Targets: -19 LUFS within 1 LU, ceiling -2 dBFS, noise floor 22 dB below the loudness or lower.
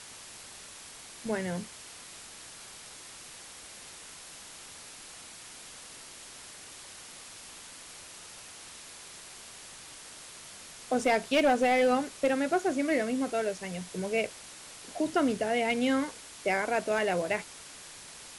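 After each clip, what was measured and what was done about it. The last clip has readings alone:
clipped 0.2%; flat tops at -18.5 dBFS; noise floor -48 dBFS; noise floor target -51 dBFS; loudness -29.0 LUFS; peak -18.5 dBFS; loudness target -19.0 LUFS
-> clip repair -18.5 dBFS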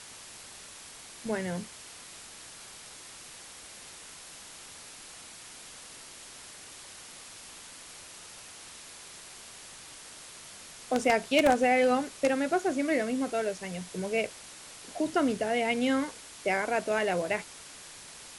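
clipped 0.0%; noise floor -48 dBFS; noise floor target -51 dBFS
-> denoiser 6 dB, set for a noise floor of -48 dBFS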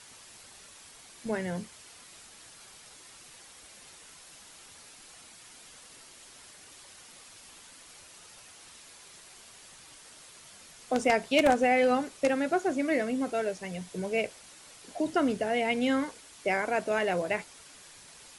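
noise floor -52 dBFS; loudness -29.0 LUFS; peak -9.5 dBFS; loudness target -19.0 LUFS
-> gain +10 dB; limiter -2 dBFS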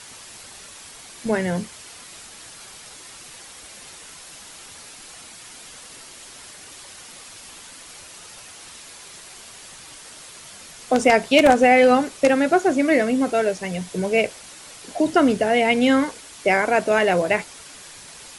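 loudness -19.0 LUFS; peak -2.0 dBFS; noise floor -42 dBFS

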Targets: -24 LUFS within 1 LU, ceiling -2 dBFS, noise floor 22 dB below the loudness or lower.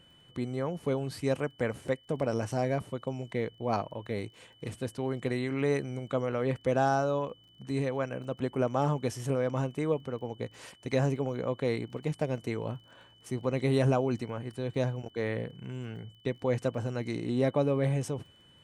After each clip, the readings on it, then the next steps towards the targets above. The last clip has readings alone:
ticks 21/s; steady tone 3000 Hz; tone level -59 dBFS; loudness -32.0 LUFS; peak -14.0 dBFS; loudness target -24.0 LUFS
-> de-click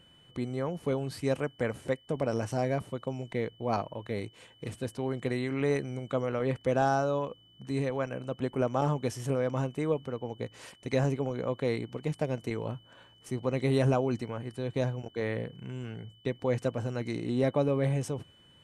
ticks 0/s; steady tone 3000 Hz; tone level -59 dBFS
-> notch 3000 Hz, Q 30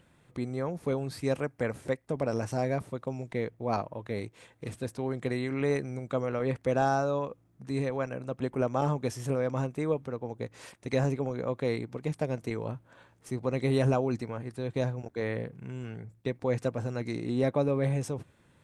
steady tone none; loudness -32.0 LUFS; peak -14.0 dBFS; loudness target -24.0 LUFS
-> gain +8 dB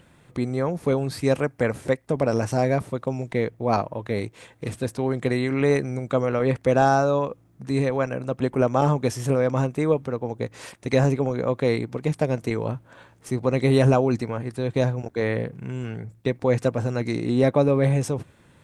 loudness -24.0 LUFS; peak -6.0 dBFS; noise floor -56 dBFS

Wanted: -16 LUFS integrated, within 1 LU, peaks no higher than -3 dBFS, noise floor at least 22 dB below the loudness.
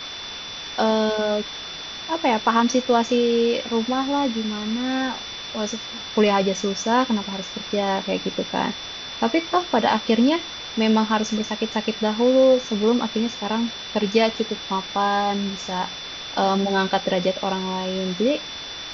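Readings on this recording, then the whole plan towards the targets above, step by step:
steady tone 3500 Hz; tone level -34 dBFS; noise floor -34 dBFS; noise floor target -45 dBFS; loudness -22.5 LUFS; peak -5.5 dBFS; loudness target -16.0 LUFS
-> notch 3500 Hz, Q 30; noise print and reduce 11 dB; gain +6.5 dB; limiter -3 dBFS

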